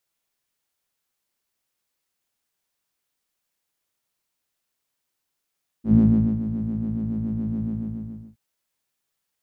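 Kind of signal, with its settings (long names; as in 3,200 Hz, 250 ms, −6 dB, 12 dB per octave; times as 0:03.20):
subtractive patch with filter wobble A2, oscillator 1 triangle, oscillator 2 sine, interval +12 semitones, oscillator 2 level 0 dB, sub −3.5 dB, filter bandpass, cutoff 170 Hz, Q 1.6, filter envelope 0.5 octaves, attack 99 ms, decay 0.45 s, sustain −12.5 dB, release 0.72 s, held 1.80 s, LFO 7.1 Hz, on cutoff 0.5 octaves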